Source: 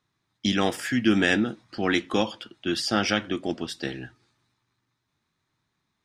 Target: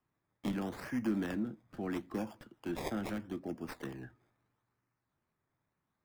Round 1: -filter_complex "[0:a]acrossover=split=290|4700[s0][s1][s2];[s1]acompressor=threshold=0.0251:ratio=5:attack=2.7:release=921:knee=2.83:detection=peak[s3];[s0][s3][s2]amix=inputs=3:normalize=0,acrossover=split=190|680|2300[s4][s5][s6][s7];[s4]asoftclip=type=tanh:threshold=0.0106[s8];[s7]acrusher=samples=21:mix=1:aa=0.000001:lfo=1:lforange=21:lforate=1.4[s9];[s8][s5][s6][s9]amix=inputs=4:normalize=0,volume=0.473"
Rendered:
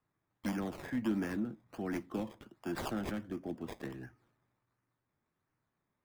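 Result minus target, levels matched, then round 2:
decimation with a swept rate: distortion +15 dB
-filter_complex "[0:a]acrossover=split=290|4700[s0][s1][s2];[s1]acompressor=threshold=0.0251:ratio=5:attack=2.7:release=921:knee=2.83:detection=peak[s3];[s0][s3][s2]amix=inputs=3:normalize=0,acrossover=split=190|680|2300[s4][s5][s6][s7];[s4]asoftclip=type=tanh:threshold=0.0106[s8];[s7]acrusher=samples=21:mix=1:aa=0.000001:lfo=1:lforange=21:lforate=0.77[s9];[s8][s5][s6][s9]amix=inputs=4:normalize=0,volume=0.473"

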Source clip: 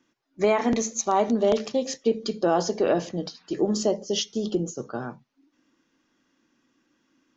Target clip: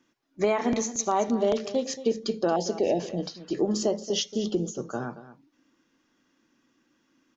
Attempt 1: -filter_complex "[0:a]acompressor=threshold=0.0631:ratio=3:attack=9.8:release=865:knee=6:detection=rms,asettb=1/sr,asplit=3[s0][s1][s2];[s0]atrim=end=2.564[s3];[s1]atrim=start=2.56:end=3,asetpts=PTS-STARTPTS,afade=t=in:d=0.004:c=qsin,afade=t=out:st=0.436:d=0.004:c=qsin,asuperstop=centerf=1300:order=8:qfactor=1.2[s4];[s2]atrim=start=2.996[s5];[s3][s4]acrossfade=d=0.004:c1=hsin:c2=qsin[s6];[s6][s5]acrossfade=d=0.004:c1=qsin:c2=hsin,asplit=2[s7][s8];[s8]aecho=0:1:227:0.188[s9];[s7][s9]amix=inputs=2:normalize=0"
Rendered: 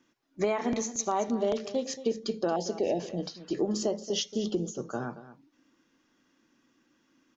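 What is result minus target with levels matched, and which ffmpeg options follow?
compression: peak gain reduction +4 dB
-filter_complex "[0:a]acompressor=threshold=0.133:ratio=3:attack=9.8:release=865:knee=6:detection=rms,asettb=1/sr,asplit=3[s0][s1][s2];[s0]atrim=end=2.564[s3];[s1]atrim=start=2.56:end=3,asetpts=PTS-STARTPTS,afade=t=in:d=0.004:c=qsin,afade=t=out:st=0.436:d=0.004:c=qsin,asuperstop=centerf=1300:order=8:qfactor=1.2[s4];[s2]atrim=start=2.996[s5];[s3][s4]acrossfade=d=0.004:c1=hsin:c2=qsin[s6];[s6][s5]acrossfade=d=0.004:c1=qsin:c2=hsin,asplit=2[s7][s8];[s8]aecho=0:1:227:0.188[s9];[s7][s9]amix=inputs=2:normalize=0"

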